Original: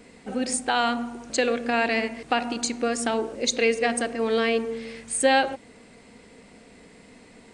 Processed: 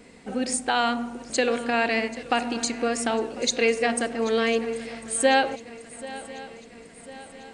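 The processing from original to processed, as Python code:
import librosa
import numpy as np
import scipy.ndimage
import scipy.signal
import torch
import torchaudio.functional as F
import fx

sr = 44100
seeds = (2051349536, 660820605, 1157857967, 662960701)

y = fx.echo_swing(x, sr, ms=1047, ratio=3, feedback_pct=49, wet_db=-17.5)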